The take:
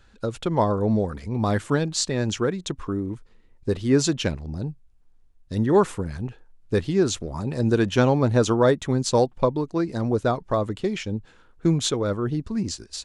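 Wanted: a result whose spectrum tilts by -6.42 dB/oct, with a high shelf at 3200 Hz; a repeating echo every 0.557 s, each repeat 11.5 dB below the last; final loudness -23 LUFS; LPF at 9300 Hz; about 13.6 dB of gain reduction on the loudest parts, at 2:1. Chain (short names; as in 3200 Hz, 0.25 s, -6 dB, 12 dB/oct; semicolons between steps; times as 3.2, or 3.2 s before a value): LPF 9300 Hz; high shelf 3200 Hz -6.5 dB; compressor 2:1, threshold -40 dBFS; feedback echo 0.557 s, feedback 27%, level -11.5 dB; gain +13 dB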